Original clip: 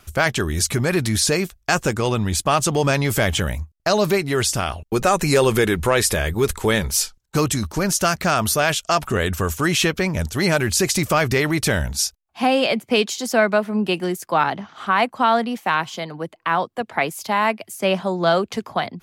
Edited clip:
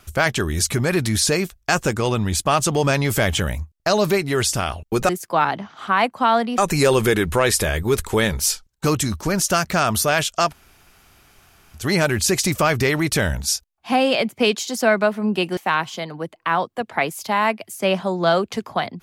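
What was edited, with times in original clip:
9.01–10.29 s: room tone, crossfade 0.10 s
14.08–15.57 s: move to 5.09 s

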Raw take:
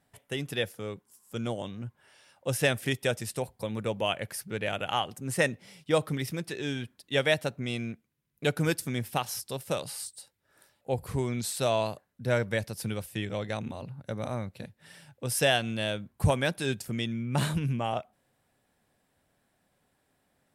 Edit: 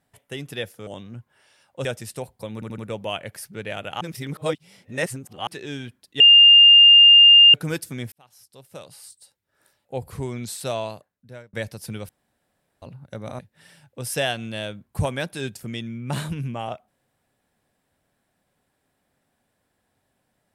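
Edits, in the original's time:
0.87–1.55 s: delete
2.53–3.05 s: delete
3.74 s: stutter 0.08 s, 4 plays
4.97–6.43 s: reverse
7.16–8.50 s: bleep 2.81 kHz -7 dBFS
9.08–10.92 s: fade in
11.63–12.49 s: fade out
13.05–13.78 s: room tone
14.35–14.64 s: delete

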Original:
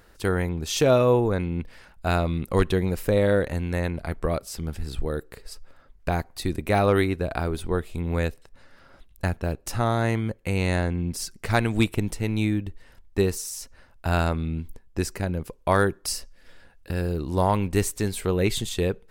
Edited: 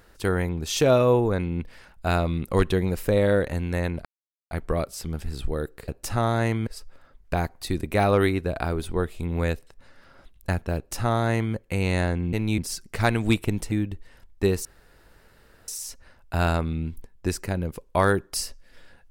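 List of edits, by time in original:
4.05 s: insert silence 0.46 s
9.51–10.30 s: copy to 5.42 s
12.22–12.47 s: move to 11.08 s
13.40 s: insert room tone 1.03 s

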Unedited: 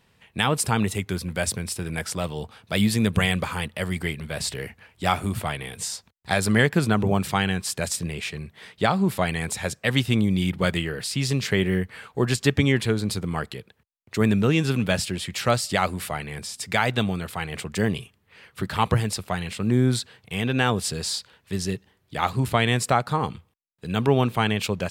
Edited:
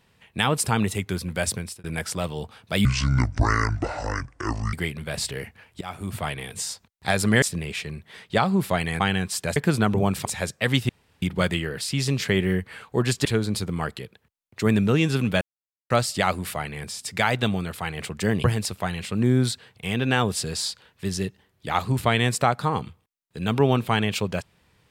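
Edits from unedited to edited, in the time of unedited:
1.57–1.84 s: fade out
2.85–3.96 s: speed 59%
5.04–5.52 s: fade in, from -21.5 dB
6.65–7.34 s: swap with 7.90–9.48 s
10.12–10.45 s: room tone
12.48–12.80 s: delete
14.96–15.45 s: mute
17.99–18.92 s: delete

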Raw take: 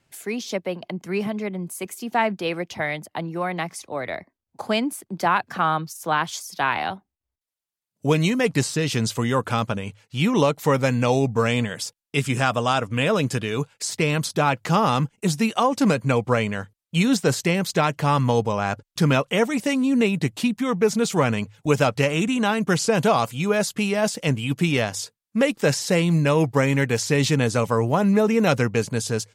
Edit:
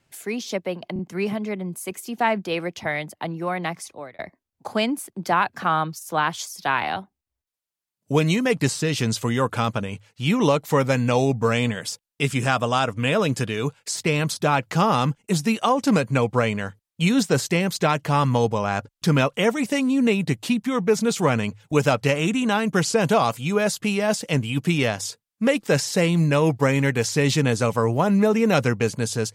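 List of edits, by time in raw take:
0.93 s: stutter 0.03 s, 3 plays
3.74–4.13 s: fade out

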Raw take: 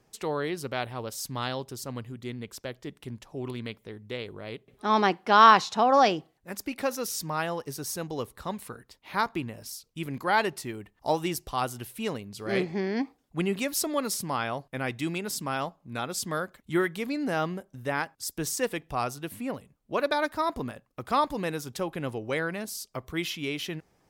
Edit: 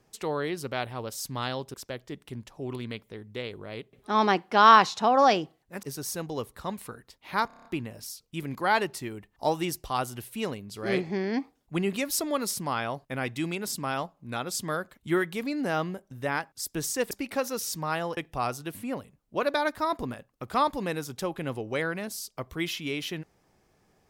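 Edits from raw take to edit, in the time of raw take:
1.74–2.49 s: delete
6.58–7.64 s: move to 18.74 s
9.28 s: stutter 0.03 s, 7 plays

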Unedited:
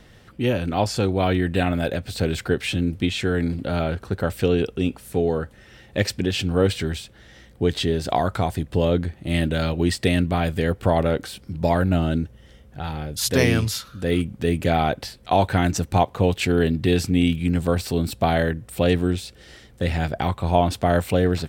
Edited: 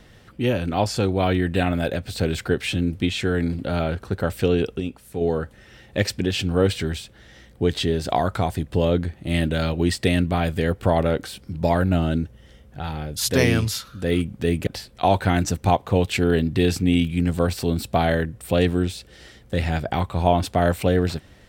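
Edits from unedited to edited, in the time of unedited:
4.80–5.21 s: gain -6 dB
14.67–14.95 s: delete

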